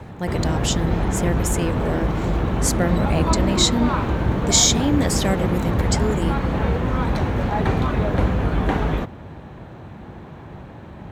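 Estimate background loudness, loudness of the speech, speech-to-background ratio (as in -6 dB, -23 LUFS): -22.5 LUFS, -22.5 LUFS, 0.0 dB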